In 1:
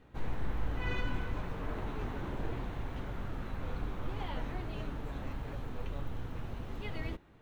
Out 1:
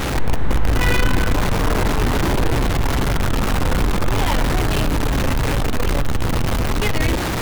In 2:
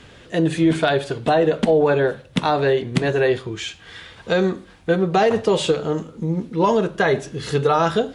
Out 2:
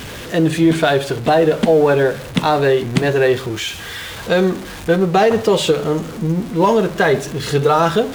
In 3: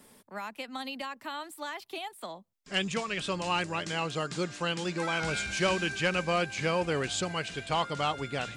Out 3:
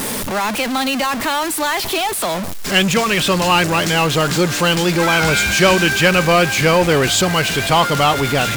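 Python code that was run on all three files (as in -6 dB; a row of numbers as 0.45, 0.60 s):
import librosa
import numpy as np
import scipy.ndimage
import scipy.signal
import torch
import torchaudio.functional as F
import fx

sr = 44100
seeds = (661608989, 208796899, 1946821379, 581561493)

y = x + 0.5 * 10.0 ** (-30.0 / 20.0) * np.sign(x)
y = fx.wow_flutter(y, sr, seeds[0], rate_hz=2.1, depth_cents=16.0)
y = y * 10.0 ** (-16 / 20.0) / np.sqrt(np.mean(np.square(y)))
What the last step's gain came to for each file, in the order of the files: +14.0, +3.0, +13.0 dB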